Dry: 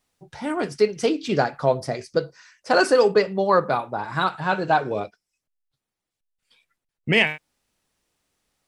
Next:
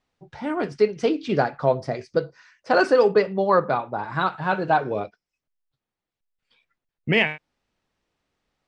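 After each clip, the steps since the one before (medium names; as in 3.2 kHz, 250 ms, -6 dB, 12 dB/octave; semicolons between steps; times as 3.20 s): low-pass 6.2 kHz 12 dB/octave; treble shelf 4.6 kHz -10 dB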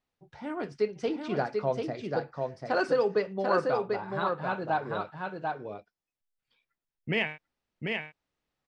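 delay 741 ms -4 dB; trim -9 dB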